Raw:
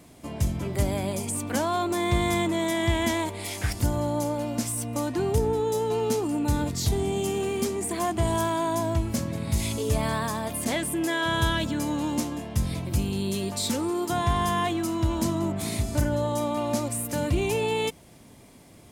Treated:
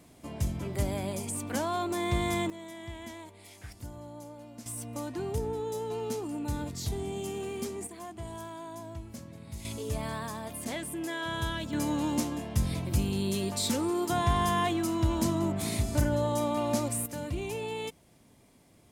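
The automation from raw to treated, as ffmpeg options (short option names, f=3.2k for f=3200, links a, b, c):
-af "asetnsamples=n=441:p=0,asendcmd='2.5 volume volume -18dB;4.66 volume volume -8.5dB;7.87 volume volume -16dB;9.65 volume volume -8.5dB;11.73 volume volume -2dB;17.06 volume volume -9.5dB',volume=-5dB"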